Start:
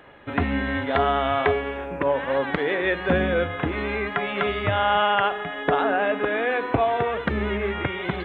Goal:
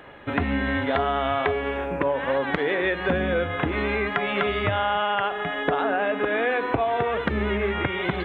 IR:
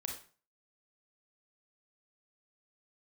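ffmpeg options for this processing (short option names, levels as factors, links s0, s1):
-af "acompressor=threshold=0.0631:ratio=4,volume=1.5"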